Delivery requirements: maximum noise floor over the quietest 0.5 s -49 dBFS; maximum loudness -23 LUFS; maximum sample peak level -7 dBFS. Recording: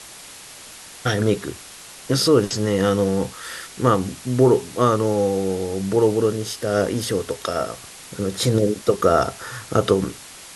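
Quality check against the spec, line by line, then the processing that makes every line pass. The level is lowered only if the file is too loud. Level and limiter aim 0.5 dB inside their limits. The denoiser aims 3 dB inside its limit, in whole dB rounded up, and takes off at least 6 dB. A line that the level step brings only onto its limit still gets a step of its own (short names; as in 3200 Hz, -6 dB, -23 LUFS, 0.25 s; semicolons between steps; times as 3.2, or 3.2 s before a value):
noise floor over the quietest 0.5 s -41 dBFS: fail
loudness -21.0 LUFS: fail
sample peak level -4.0 dBFS: fail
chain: denoiser 9 dB, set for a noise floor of -41 dBFS; gain -2.5 dB; limiter -7.5 dBFS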